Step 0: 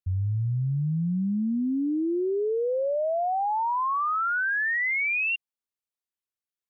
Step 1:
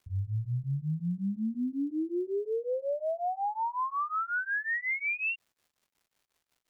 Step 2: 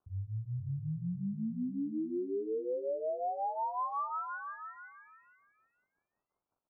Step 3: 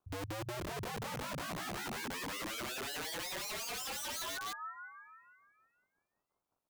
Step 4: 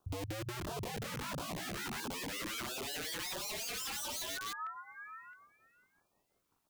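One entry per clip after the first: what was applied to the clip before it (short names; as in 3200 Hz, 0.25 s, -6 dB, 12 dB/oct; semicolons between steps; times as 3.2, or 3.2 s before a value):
crackle 410/s -55 dBFS; beating tremolo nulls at 5.5 Hz; gain -3 dB
steep low-pass 1300 Hz 48 dB/oct; low shelf 130 Hz -4 dB; on a send: feedback echo 0.477 s, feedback 19%, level -8 dB; on the sum: gain -3.5 dB
wrapped overs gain 37.5 dB; gain +1.5 dB
compressor 10:1, threshold -47 dBFS, peak gain reduction 9 dB; LFO notch saw down 1.5 Hz 460–2300 Hz; gain +9.5 dB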